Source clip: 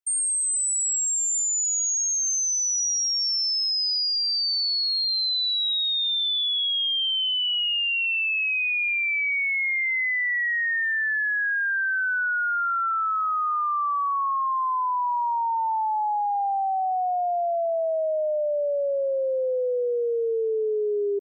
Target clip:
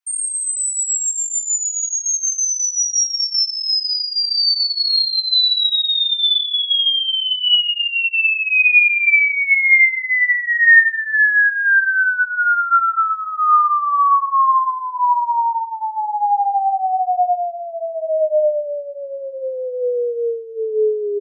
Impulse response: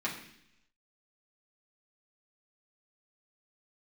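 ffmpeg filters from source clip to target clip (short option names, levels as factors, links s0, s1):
-filter_complex "[0:a]asettb=1/sr,asplit=3[s0][s1][s2];[s0]atrim=end=6.104[s3];[s1]atrim=start=6.1:end=7.08,asetpts=PTS-STARTPTS,afade=t=in:d=0.004:c=qsin,afade=t=out:st=0.976:d=0.004:c=qsin,highpass=280[s4];[s2]atrim=start=7.076[s5];[s3][s4]acrossfade=d=0.004:c1=hsin:c2=qsin[s6];[s6][s5]acrossfade=d=0.004:c1=qsin:c2=hsin,acrossover=split=740[s7][s8];[s7]adelay=100[s9];[s9][s8]amix=inputs=2:normalize=0[s10];[1:a]atrim=start_sample=2205,atrim=end_sample=4410[s11];[s10][s11]afir=irnorm=-1:irlink=0,volume=1.58"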